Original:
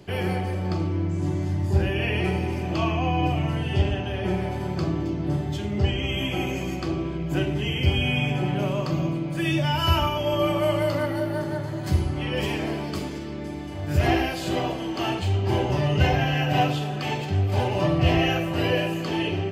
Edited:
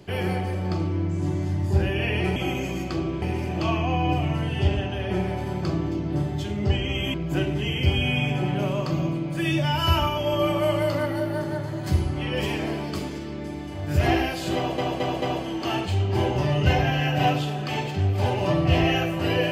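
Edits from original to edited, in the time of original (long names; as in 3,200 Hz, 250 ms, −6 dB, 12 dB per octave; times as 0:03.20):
0:06.28–0:07.14: move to 0:02.36
0:14.56: stutter 0.22 s, 4 plays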